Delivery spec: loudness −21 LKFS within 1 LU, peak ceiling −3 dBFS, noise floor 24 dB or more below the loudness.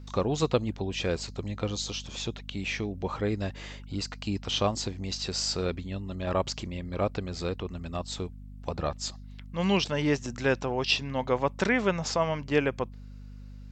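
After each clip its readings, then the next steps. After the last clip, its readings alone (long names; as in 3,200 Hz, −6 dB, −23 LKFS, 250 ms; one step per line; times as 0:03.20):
mains hum 50 Hz; hum harmonics up to 250 Hz; level of the hum −41 dBFS; integrated loudness −30.5 LKFS; sample peak −10.5 dBFS; target loudness −21.0 LKFS
→ hum removal 50 Hz, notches 5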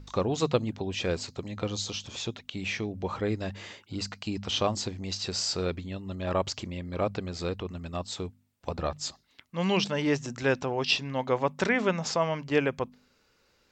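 mains hum none found; integrated loudness −30.5 LKFS; sample peak −10.5 dBFS; target loudness −21.0 LKFS
→ level +9.5 dB
brickwall limiter −3 dBFS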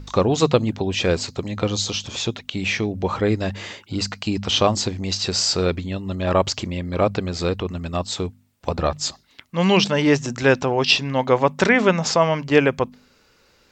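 integrated loudness −21.0 LKFS; sample peak −3.0 dBFS; background noise floor −58 dBFS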